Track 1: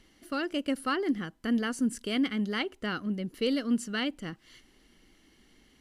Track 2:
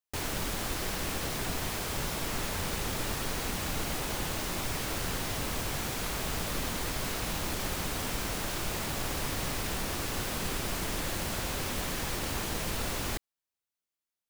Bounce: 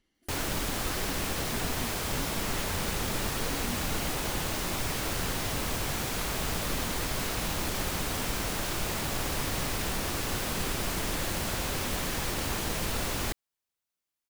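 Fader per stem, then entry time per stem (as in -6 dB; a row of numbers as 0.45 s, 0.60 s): -15.0 dB, +2.0 dB; 0.00 s, 0.15 s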